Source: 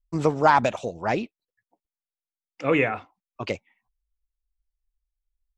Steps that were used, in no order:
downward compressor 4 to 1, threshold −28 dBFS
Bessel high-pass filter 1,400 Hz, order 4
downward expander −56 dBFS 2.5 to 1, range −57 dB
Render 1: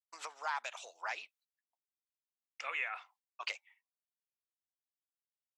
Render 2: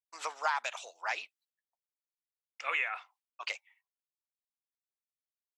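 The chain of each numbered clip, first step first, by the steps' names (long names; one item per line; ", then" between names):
downward compressor, then downward expander, then Bessel high-pass filter
downward expander, then Bessel high-pass filter, then downward compressor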